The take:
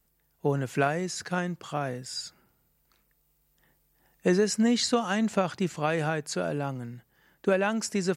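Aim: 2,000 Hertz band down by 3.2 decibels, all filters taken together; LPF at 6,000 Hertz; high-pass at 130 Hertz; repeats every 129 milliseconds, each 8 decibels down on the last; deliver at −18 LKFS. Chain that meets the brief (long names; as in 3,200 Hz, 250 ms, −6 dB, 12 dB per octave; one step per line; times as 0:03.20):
high-pass filter 130 Hz
low-pass filter 6,000 Hz
parametric band 2,000 Hz −4.5 dB
repeating echo 129 ms, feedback 40%, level −8 dB
level +10.5 dB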